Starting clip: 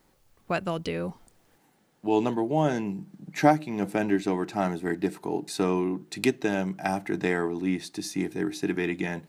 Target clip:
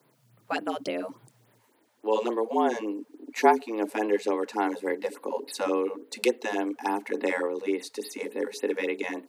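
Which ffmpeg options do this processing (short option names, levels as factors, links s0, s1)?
-af "afreqshift=110,afftfilt=real='re*(1-between(b*sr/1024,280*pow(7400/280,0.5+0.5*sin(2*PI*3.5*pts/sr))/1.41,280*pow(7400/280,0.5+0.5*sin(2*PI*3.5*pts/sr))*1.41))':imag='im*(1-between(b*sr/1024,280*pow(7400/280,0.5+0.5*sin(2*PI*3.5*pts/sr))/1.41,280*pow(7400/280,0.5+0.5*sin(2*PI*3.5*pts/sr))*1.41))':win_size=1024:overlap=0.75"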